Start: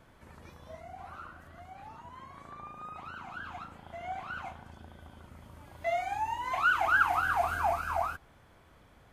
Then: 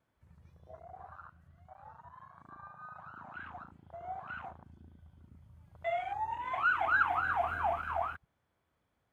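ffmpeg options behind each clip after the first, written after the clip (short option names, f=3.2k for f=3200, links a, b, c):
-af "highpass=59,afwtdn=0.00891,volume=-3dB"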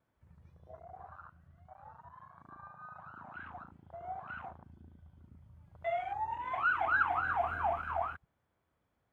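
-af "highshelf=f=3k:g=-7"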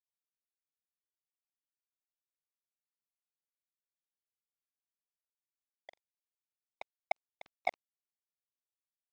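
-filter_complex "[0:a]afftfilt=real='hypot(re,im)*cos(2*PI*random(0))':imag='hypot(re,im)*sin(2*PI*random(1))':win_size=512:overlap=0.75,asplit=3[a][b][c];[a]bandpass=f=730:t=q:w=8,volume=0dB[d];[b]bandpass=f=1.09k:t=q:w=8,volume=-6dB[e];[c]bandpass=f=2.44k:t=q:w=8,volume=-9dB[f];[d][e][f]amix=inputs=3:normalize=0,acrusher=bits=4:mix=0:aa=0.5,volume=12.5dB"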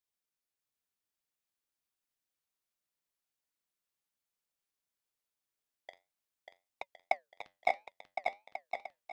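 -filter_complex "[0:a]flanger=delay=2.5:depth=8.6:regen=-75:speed=0.59:shape=sinusoidal,asplit=2[a][b];[b]aecho=0:1:590|1062|1440|1742|1983:0.631|0.398|0.251|0.158|0.1[c];[a][c]amix=inputs=2:normalize=0,volume=7.5dB"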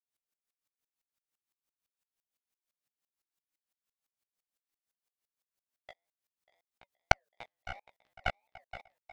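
-filter_complex "[0:a]aeval=exprs='0.266*(cos(1*acos(clip(val(0)/0.266,-1,1)))-cos(1*PI/2))+0.0944*(cos(4*acos(clip(val(0)/0.266,-1,1)))-cos(4*PI/2))':c=same,asplit=2[a][b];[b]adelay=16,volume=-5dB[c];[a][c]amix=inputs=2:normalize=0,aeval=exprs='val(0)*pow(10,-34*if(lt(mod(-5.9*n/s,1),2*abs(-5.9)/1000),1-mod(-5.9*n/s,1)/(2*abs(-5.9)/1000),(mod(-5.9*n/s,1)-2*abs(-5.9)/1000)/(1-2*abs(-5.9)/1000))/20)':c=same,volume=5dB"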